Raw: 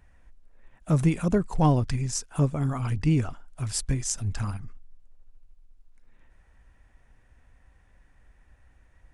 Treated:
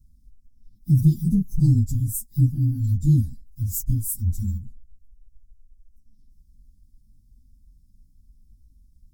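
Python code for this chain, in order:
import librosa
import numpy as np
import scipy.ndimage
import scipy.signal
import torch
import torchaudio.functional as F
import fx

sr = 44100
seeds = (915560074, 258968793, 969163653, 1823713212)

y = fx.partial_stretch(x, sr, pct=114)
y = scipy.signal.sosfilt(scipy.signal.ellip(3, 1.0, 40, [240.0, 5600.0], 'bandstop', fs=sr, output='sos'), y)
y = F.gain(torch.from_numpy(y), 7.5).numpy()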